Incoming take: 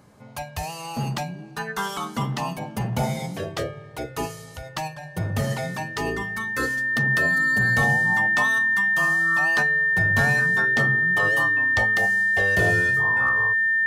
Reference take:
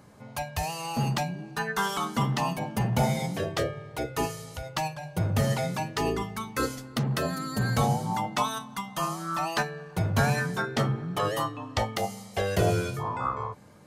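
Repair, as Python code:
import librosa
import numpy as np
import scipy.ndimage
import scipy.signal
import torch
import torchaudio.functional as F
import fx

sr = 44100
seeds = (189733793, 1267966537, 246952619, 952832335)

y = fx.fix_declip(x, sr, threshold_db=-12.5)
y = fx.notch(y, sr, hz=1800.0, q=30.0)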